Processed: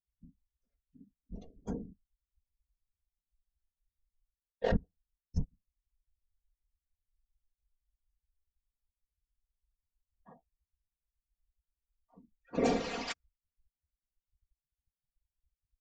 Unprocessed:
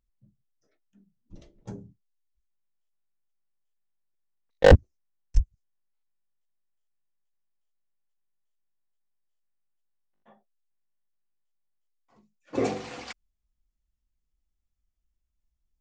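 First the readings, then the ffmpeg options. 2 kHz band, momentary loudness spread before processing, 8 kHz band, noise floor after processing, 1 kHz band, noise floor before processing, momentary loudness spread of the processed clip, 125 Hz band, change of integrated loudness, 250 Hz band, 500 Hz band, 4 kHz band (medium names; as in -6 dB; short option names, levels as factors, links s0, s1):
-11.0 dB, 21 LU, no reading, under -85 dBFS, -7.0 dB, -79 dBFS, 20 LU, -13.5 dB, -13.0 dB, -4.5 dB, -12.0 dB, -7.0 dB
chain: -af "afftfilt=real='hypot(re,im)*cos(2*PI*random(0))':imag='hypot(re,im)*sin(2*PI*random(1))':win_size=512:overlap=0.75,areverse,acompressor=threshold=0.0224:ratio=16,areverse,afftdn=nr=24:nf=-64,aecho=1:1:4.3:0.73,volume=2.11"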